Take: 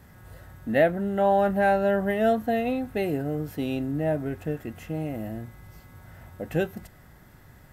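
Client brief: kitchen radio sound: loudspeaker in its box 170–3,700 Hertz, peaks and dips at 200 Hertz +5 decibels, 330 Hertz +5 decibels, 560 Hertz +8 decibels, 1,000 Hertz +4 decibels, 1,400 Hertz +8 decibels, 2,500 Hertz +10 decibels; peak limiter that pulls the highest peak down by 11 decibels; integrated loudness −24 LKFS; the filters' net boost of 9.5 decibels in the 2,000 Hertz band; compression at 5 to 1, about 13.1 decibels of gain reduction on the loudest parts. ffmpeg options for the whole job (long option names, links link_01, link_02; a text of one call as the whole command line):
ffmpeg -i in.wav -af "equalizer=frequency=2000:width_type=o:gain=6,acompressor=threshold=-29dB:ratio=5,alimiter=level_in=5.5dB:limit=-24dB:level=0:latency=1,volume=-5.5dB,highpass=170,equalizer=frequency=200:width_type=q:width=4:gain=5,equalizer=frequency=330:width_type=q:width=4:gain=5,equalizer=frequency=560:width_type=q:width=4:gain=8,equalizer=frequency=1000:width_type=q:width=4:gain=4,equalizer=frequency=1400:width_type=q:width=4:gain=8,equalizer=frequency=2500:width_type=q:width=4:gain=10,lowpass=frequency=3700:width=0.5412,lowpass=frequency=3700:width=1.3066,volume=11dB" out.wav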